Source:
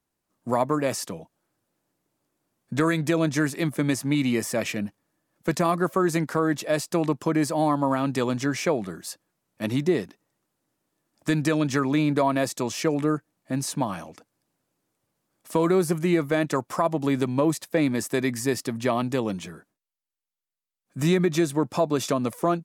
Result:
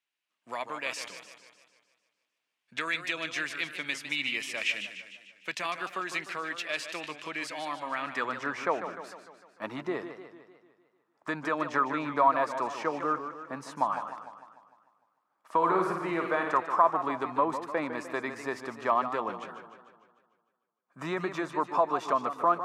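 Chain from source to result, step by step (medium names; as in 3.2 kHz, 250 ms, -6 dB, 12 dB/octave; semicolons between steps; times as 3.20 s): band-pass sweep 2.7 kHz -> 1.1 kHz, 7.80–8.48 s; 15.57–16.58 s: flutter echo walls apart 9.2 m, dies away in 0.58 s; modulated delay 150 ms, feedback 55%, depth 144 cents, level -10 dB; trim +5.5 dB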